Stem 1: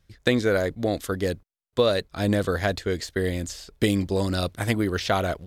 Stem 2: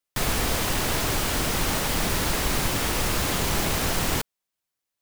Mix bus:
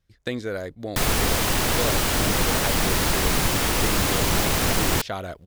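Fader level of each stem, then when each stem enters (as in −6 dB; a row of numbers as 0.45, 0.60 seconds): −7.5, +3.0 decibels; 0.00, 0.80 seconds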